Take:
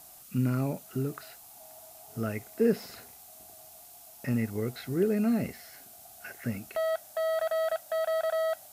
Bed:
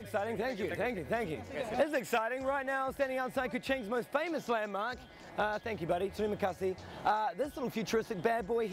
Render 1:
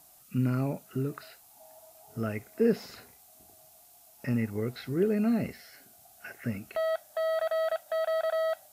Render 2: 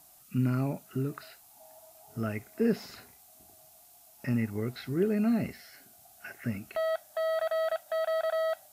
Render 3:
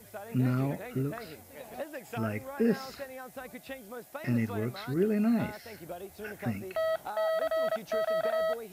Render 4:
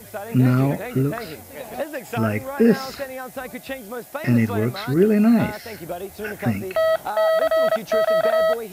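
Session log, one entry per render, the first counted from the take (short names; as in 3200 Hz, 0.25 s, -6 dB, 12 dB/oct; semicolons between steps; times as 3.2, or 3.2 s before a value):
noise print and reduce 6 dB
bell 490 Hz -6.5 dB 0.28 oct
add bed -9 dB
gain +11 dB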